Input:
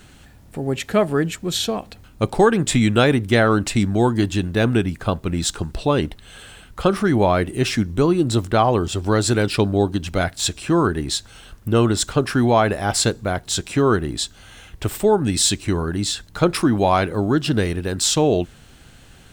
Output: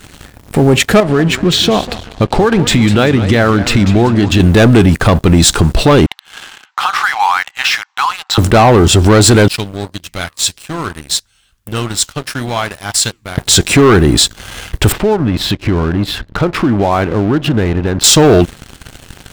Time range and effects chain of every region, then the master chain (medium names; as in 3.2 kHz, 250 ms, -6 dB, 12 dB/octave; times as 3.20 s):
1.00–4.40 s: low-pass 4.8 kHz + compression 4:1, threshold -28 dBFS + modulated delay 194 ms, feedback 40%, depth 173 cents, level -13 dB
6.06–8.38 s: brick-wall FIR band-pass 740–8100 Hz + distance through air 130 m + compression 3:1, threshold -29 dBFS
9.48–13.38 s: amplifier tone stack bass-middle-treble 5-5-5 + flange 1.7 Hz, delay 5.2 ms, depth 9.7 ms, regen -79%
14.92–18.04 s: distance through air 360 m + compression 3:1, threshold -33 dBFS
whole clip: waveshaping leveller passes 3; loudness maximiser +9.5 dB; trim -1 dB